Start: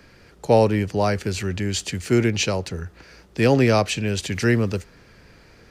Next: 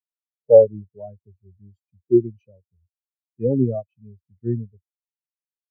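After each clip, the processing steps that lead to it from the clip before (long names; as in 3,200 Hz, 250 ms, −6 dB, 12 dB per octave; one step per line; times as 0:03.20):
every bin expanded away from the loudest bin 4 to 1
level +2.5 dB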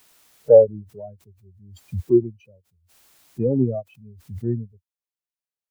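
background raised ahead of every attack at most 73 dB per second
level −1 dB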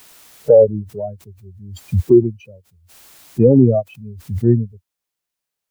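boost into a limiter +12 dB
level −1 dB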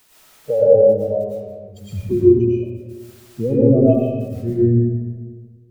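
convolution reverb RT60 1.6 s, pre-delay 70 ms, DRR −9 dB
level −10.5 dB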